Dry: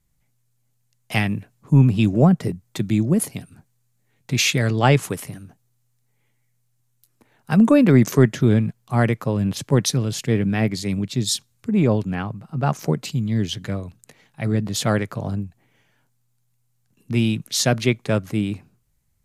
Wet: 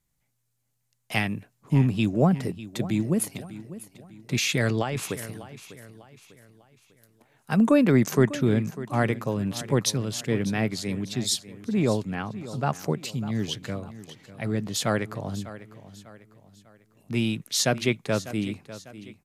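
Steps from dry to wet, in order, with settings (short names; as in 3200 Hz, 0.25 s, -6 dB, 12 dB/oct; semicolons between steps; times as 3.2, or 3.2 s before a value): low shelf 180 Hz -7 dB; 4.33–5.04 negative-ratio compressor -22 dBFS, ratio -1; feedback echo 0.598 s, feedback 41%, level -15.5 dB; gain -3 dB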